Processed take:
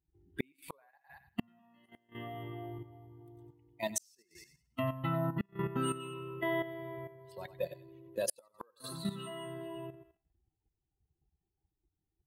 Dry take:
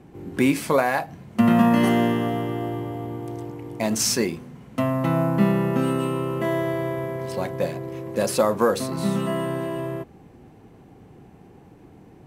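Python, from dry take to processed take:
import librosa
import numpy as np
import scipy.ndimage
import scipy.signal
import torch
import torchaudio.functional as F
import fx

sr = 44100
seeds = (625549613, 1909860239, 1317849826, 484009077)

p1 = fx.bin_expand(x, sr, power=2.0)
p2 = fx.tilt_eq(p1, sr, slope=1.5)
p3 = p2 + fx.echo_thinned(p2, sr, ms=95, feedback_pct=30, hz=840.0, wet_db=-9.5, dry=0)
p4 = fx.gate_flip(p3, sr, shuts_db=-18.0, range_db=-39)
p5 = fx.level_steps(p4, sr, step_db=11)
y = F.gain(torch.from_numpy(p5), 1.0).numpy()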